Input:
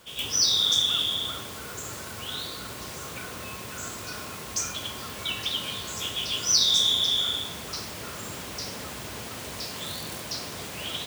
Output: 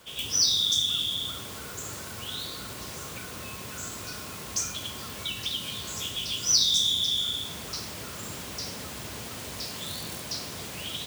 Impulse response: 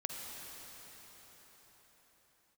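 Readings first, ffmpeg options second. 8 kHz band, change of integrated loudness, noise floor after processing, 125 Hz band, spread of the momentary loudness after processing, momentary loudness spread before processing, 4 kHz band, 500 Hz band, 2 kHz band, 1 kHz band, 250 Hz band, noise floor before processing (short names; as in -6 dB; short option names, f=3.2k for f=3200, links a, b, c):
0.0 dB, -1.5 dB, -40 dBFS, 0.0 dB, 16 LU, 16 LU, -2.0 dB, -3.0 dB, -3.5 dB, -4.0 dB, -1.0 dB, -39 dBFS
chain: -filter_complex "[0:a]acrossover=split=290|3000[a][b][c];[b]acompressor=threshold=-41dB:ratio=6[d];[a][d][c]amix=inputs=3:normalize=0"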